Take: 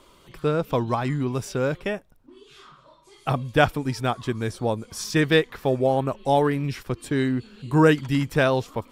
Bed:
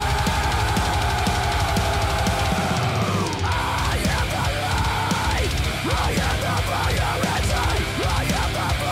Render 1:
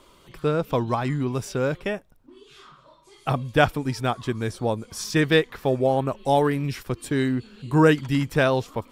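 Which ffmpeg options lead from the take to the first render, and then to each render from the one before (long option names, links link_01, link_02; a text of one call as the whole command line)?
ffmpeg -i in.wav -filter_complex "[0:a]asettb=1/sr,asplit=3[link_01][link_02][link_03];[link_01]atrim=end=6.154[link_04];[link_02]atrim=start=6.15:end=7.36,asetpts=PTS-STARTPTS,afade=type=in:duration=0.004:curve=qsin,afade=type=out:start_time=1.206:duration=0.004:curve=qsin,highshelf=frequency=7500:gain=5[link_05];[link_03]atrim=start=7.356[link_06];[link_04][link_05]acrossfade=duration=0.004:curve1=hsin:curve2=qsin[link_07];[link_07][link_06]acrossfade=duration=0.004:curve1=qsin:curve2=hsin" out.wav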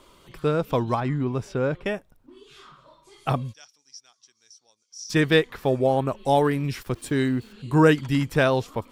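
ffmpeg -i in.wav -filter_complex "[0:a]asettb=1/sr,asplit=3[link_01][link_02][link_03];[link_01]atrim=end=1.004[link_04];[link_02]atrim=start=1:end=1.86,asetpts=PTS-STARTPTS,afade=type=in:duration=0.004:curve=qsin,afade=type=out:start_time=0.856:duration=0.004:curve=qsin,lowpass=frequency=2100:poles=1[link_05];[link_03]atrim=start=1.856[link_06];[link_04][link_05]acrossfade=duration=0.004:curve1=hsin:curve2=qsin[link_07];[link_07][link_06]acrossfade=duration=0.004:curve1=qsin:curve2=hsin,asplit=3[link_08][link_09][link_10];[link_08]afade=type=out:start_time=3.52:duration=0.02[link_11];[link_09]bandpass=frequency=5700:width_type=q:width=11,afade=type=in:start_time=3.52:duration=0.02,afade=type=out:start_time=5.09:duration=0.02[link_12];[link_10]afade=type=in:start_time=5.09:duration=0.02[link_13];[link_11][link_12][link_13]amix=inputs=3:normalize=0,asettb=1/sr,asplit=3[link_14][link_15][link_16];[link_14]atrim=end=6.764[link_17];[link_15]atrim=start=6.76:end=7.53,asetpts=PTS-STARTPTS,afade=type=in:duration=0.004:curve=qsin,afade=type=out:start_time=0.766:duration=0.004:curve=qsin,aeval=exprs='val(0)*gte(abs(val(0)),0.00335)':channel_layout=same[link_18];[link_16]atrim=start=7.526[link_19];[link_17][link_18]acrossfade=duration=0.004:curve1=hsin:curve2=qsin[link_20];[link_20][link_19]acrossfade=duration=0.004:curve1=qsin:curve2=hsin" out.wav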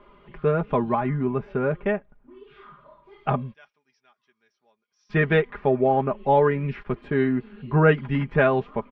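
ffmpeg -i in.wav -af "lowpass=frequency=2400:width=0.5412,lowpass=frequency=2400:width=1.3066,aecho=1:1:4.9:0.66" out.wav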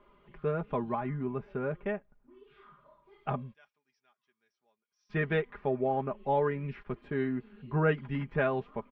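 ffmpeg -i in.wav -af "volume=-9.5dB" out.wav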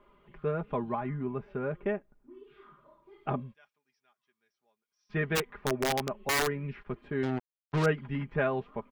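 ffmpeg -i in.wav -filter_complex "[0:a]asettb=1/sr,asplit=3[link_01][link_02][link_03];[link_01]atrim=end=1.804[link_04];[link_02]atrim=start=1.8:end=3.4,asetpts=PTS-STARTPTS,afade=type=in:duration=0.004:curve=qsin,afade=type=out:start_time=1.596:duration=0.004:curve=qsin,equalizer=frequency=320:width=2.6:gain=10.5[link_05];[link_03]atrim=start=3.396[link_06];[link_04][link_05]acrossfade=duration=0.004:curve1=hsin:curve2=qsin[link_07];[link_07][link_06]acrossfade=duration=0.004:curve1=qsin:curve2=hsin,asplit=3[link_08][link_09][link_10];[link_08]afade=type=out:start_time=5.35:duration=0.02[link_11];[link_09]aeval=exprs='(mod(12.6*val(0)+1,2)-1)/12.6':channel_layout=same,afade=type=in:start_time=5.35:duration=0.02,afade=type=out:start_time=6.46:duration=0.02[link_12];[link_10]afade=type=in:start_time=6.46:duration=0.02[link_13];[link_11][link_12][link_13]amix=inputs=3:normalize=0,asettb=1/sr,asplit=3[link_14][link_15][link_16];[link_14]atrim=end=7.234[link_17];[link_15]atrim=start=7.23:end=7.86,asetpts=PTS-STARTPTS,afade=type=in:duration=0.004:curve=qsin,afade=type=out:start_time=0.626:duration=0.004:curve=qsin,acrusher=bits=4:mix=0:aa=0.5[link_18];[link_16]atrim=start=7.856[link_19];[link_17][link_18]acrossfade=duration=0.004:curve1=hsin:curve2=qsin[link_20];[link_20][link_19]acrossfade=duration=0.004:curve1=qsin:curve2=hsin" out.wav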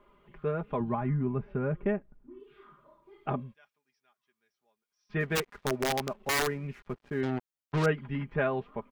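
ffmpeg -i in.wav -filter_complex "[0:a]asettb=1/sr,asplit=3[link_01][link_02][link_03];[link_01]atrim=end=0.804[link_04];[link_02]atrim=start=0.8:end=2.4,asetpts=PTS-STARTPTS,afade=type=in:duration=0.004:curve=qsin,afade=type=out:start_time=1.596:duration=0.004:curve=qsin,bass=frequency=250:gain=8,treble=frequency=4000:gain=-9[link_05];[link_03]atrim=start=2.396[link_06];[link_04][link_05]acrossfade=duration=0.004:curve1=hsin:curve2=qsin[link_07];[link_07][link_06]acrossfade=duration=0.004:curve1=qsin:curve2=hsin,asettb=1/sr,asplit=3[link_08][link_09][link_10];[link_08]atrim=end=5.204[link_11];[link_09]atrim=start=5.2:end=7.21,asetpts=PTS-STARTPTS,afade=type=in:duration=0.004:curve=qsin,afade=type=out:start_time=2.006:duration=0.004:curve=qsin,aeval=exprs='sgn(val(0))*max(abs(val(0))-0.00168,0)':channel_layout=same[link_12];[link_10]atrim=start=7.206[link_13];[link_11][link_12]acrossfade=duration=0.004:curve1=hsin:curve2=qsin[link_14];[link_14][link_13]acrossfade=duration=0.004:curve1=qsin:curve2=hsin" out.wav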